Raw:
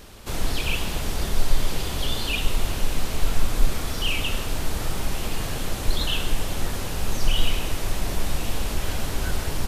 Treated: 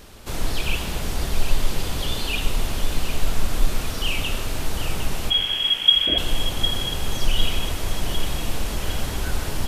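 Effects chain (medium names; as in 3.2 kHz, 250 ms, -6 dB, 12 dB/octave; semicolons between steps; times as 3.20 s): 5.30–6.18 s: frequency inversion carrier 3.3 kHz; two-band feedback delay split 1.9 kHz, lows 127 ms, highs 755 ms, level -9.5 dB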